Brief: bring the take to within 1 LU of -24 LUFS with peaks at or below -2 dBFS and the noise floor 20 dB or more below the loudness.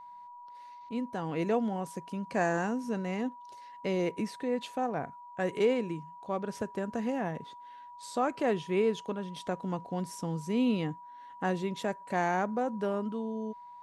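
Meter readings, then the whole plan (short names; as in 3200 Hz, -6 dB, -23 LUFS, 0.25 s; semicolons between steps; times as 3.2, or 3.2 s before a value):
steady tone 970 Hz; tone level -46 dBFS; loudness -33.0 LUFS; peak -17.0 dBFS; loudness target -24.0 LUFS
-> notch 970 Hz, Q 30; gain +9 dB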